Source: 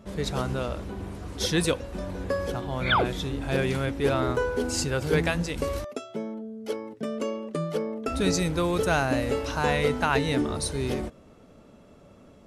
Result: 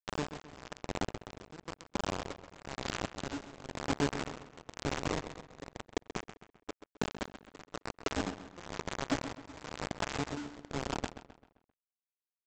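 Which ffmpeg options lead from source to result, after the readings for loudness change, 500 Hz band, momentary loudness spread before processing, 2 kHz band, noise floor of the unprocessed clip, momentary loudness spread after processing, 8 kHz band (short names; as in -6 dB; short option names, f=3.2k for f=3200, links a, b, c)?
-12.0 dB, -14.0 dB, 11 LU, -12.0 dB, -53 dBFS, 13 LU, -11.0 dB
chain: -filter_complex "[0:a]acrossover=split=190[a][b];[b]acompressor=threshold=-27dB:ratio=10[c];[a][c]amix=inputs=2:normalize=0,afwtdn=0.0224,acrossover=split=300|1600[d][e][f];[f]aeval=exprs='max(val(0),0)':c=same[g];[d][e][g]amix=inputs=3:normalize=0,highpass=77,asplit=2[h][i];[i]adelay=42,volume=-6dB[j];[h][j]amix=inputs=2:normalize=0,acompressor=threshold=-34dB:ratio=8,equalizer=f=290:w=6.7:g=12,aresample=16000,acrusher=bits=4:mix=0:aa=0.000001,aresample=44100,tremolo=f=1:d=0.91,asplit=2[k][l];[l]adelay=131,lowpass=f=4.5k:p=1,volume=-12dB,asplit=2[m][n];[n]adelay=131,lowpass=f=4.5k:p=1,volume=0.45,asplit=2[o][p];[p]adelay=131,lowpass=f=4.5k:p=1,volume=0.45,asplit=2[q][r];[r]adelay=131,lowpass=f=4.5k:p=1,volume=0.45,asplit=2[s][t];[t]adelay=131,lowpass=f=4.5k:p=1,volume=0.45[u];[k][m][o][q][s][u]amix=inputs=6:normalize=0,volume=1.5dB"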